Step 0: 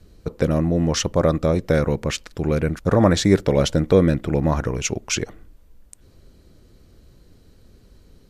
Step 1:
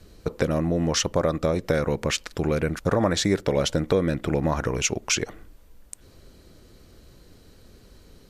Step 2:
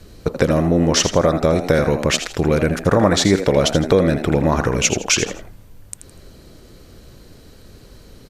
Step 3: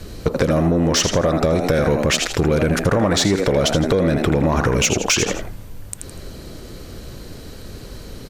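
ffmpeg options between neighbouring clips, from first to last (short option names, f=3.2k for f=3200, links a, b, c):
-af "lowshelf=f=330:g=-6.5,acompressor=threshold=-27dB:ratio=2.5,volume=5dB"
-filter_complex "[0:a]asplit=4[a][b][c][d];[b]adelay=81,afreqshift=87,volume=-10dB[e];[c]adelay=162,afreqshift=174,volume=-20.2dB[f];[d]adelay=243,afreqshift=261,volume=-30.3dB[g];[a][e][f][g]amix=inputs=4:normalize=0,volume=7dB"
-filter_complex "[0:a]asplit=2[a][b];[b]alimiter=limit=-13dB:level=0:latency=1:release=53,volume=1.5dB[c];[a][c]amix=inputs=2:normalize=0,acompressor=threshold=-13dB:ratio=6,asoftclip=type=tanh:threshold=-10dB,volume=1.5dB"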